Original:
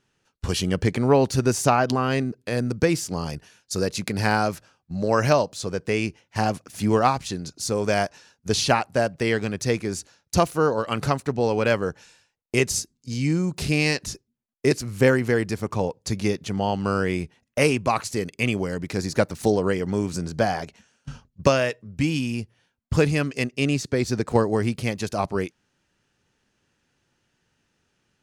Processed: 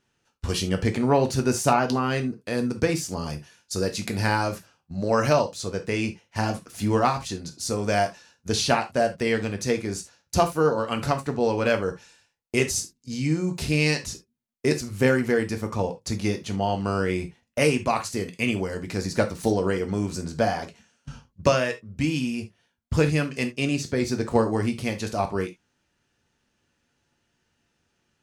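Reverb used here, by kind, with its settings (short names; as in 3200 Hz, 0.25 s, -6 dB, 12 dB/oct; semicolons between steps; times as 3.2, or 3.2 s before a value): non-linear reverb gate 0.1 s falling, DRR 5 dB; gain -2.5 dB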